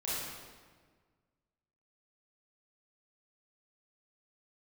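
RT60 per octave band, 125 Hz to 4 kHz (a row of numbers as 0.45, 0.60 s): 2.0, 1.9, 1.7, 1.5, 1.3, 1.1 s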